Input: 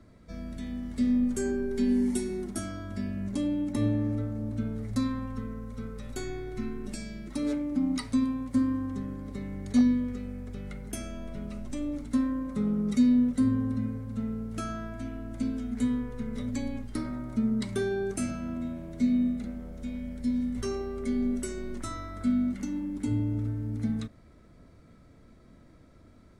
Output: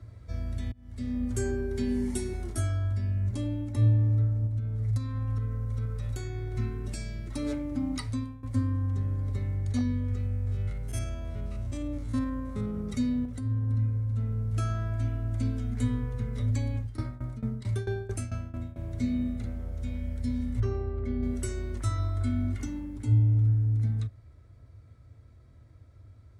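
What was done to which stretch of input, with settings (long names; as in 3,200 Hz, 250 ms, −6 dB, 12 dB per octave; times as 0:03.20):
0:00.72–0:01.35: fade in
0:02.31–0:02.93: double-tracking delay 23 ms −3 dB
0:04.46–0:06.55: downward compressor 4 to 1, threshold −35 dBFS
0:07.93–0:08.43: fade out linear, to −17.5 dB
0:10.26–0:12.75: spectrum averaged block by block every 50 ms
0:13.25–0:13.70: downward compressor, threshold −28 dBFS
0:16.76–0:18.79: shaped tremolo saw down 4.5 Hz, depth 90%
0:20.60–0:21.23: head-to-tape spacing loss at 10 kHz 27 dB
0:21.98–0:22.66: comb filter 2.8 ms
whole clip: high-pass filter 55 Hz; low shelf with overshoot 140 Hz +10 dB, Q 3; speech leveller within 3 dB 0.5 s; level −3 dB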